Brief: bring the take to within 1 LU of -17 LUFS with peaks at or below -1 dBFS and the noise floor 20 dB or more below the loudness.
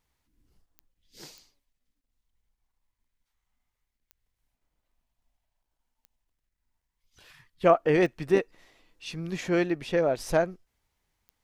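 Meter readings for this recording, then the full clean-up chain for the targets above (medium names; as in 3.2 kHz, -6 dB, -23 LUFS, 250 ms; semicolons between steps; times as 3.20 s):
clicks found 6; loudness -26.0 LUFS; peak level -7.5 dBFS; loudness target -17.0 LUFS
-> de-click; trim +9 dB; peak limiter -1 dBFS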